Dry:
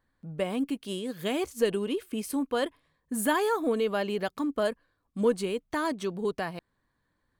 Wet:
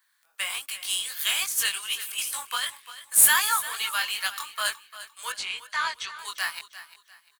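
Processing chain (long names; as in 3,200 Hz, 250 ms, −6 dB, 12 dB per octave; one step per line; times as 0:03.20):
high-pass filter 1,100 Hz 24 dB per octave
spectral tilt +4 dB per octave
0:02.18–0:03.16: compressor whose output falls as the input rises −35 dBFS, ratio −1
noise that follows the level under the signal 18 dB
chorus effect 2.6 Hz, delay 19 ms, depth 3.9 ms
0:05.32–0:06.19: high-frequency loss of the air 130 metres
repeating echo 348 ms, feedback 32%, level −14.5 dB
level +9 dB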